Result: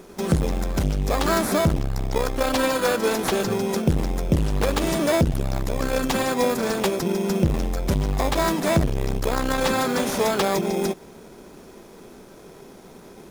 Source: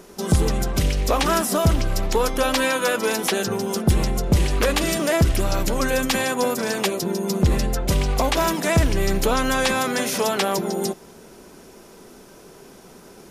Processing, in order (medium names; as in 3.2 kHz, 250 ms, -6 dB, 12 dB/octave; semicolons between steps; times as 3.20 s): in parallel at +1 dB: sample-rate reducer 2.9 kHz, jitter 0%; on the sum: transformer saturation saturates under 210 Hz; trim -5 dB